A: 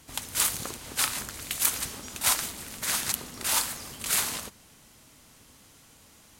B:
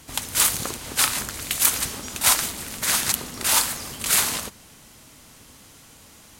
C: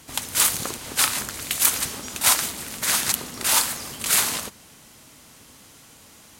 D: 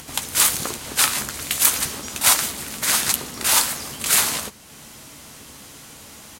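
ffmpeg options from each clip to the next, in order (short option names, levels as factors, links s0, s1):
-af "acontrast=69"
-af "lowshelf=f=62:g=-9.5"
-filter_complex "[0:a]acompressor=mode=upward:threshold=0.0141:ratio=2.5,asplit=2[s0][s1];[s1]adelay=14,volume=0.282[s2];[s0][s2]amix=inputs=2:normalize=0,volume=1.26"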